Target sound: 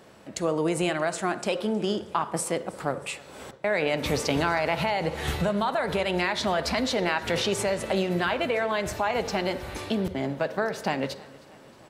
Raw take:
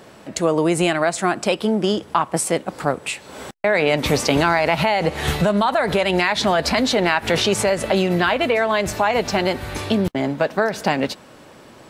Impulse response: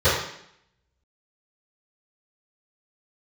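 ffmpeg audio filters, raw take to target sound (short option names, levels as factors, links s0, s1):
-filter_complex "[0:a]aecho=1:1:315|630|945|1260:0.0708|0.0404|0.023|0.0131,asplit=2[s0][s1];[1:a]atrim=start_sample=2205,adelay=38[s2];[s1][s2]afir=irnorm=-1:irlink=0,volume=0.0224[s3];[s0][s3]amix=inputs=2:normalize=0,volume=0.398"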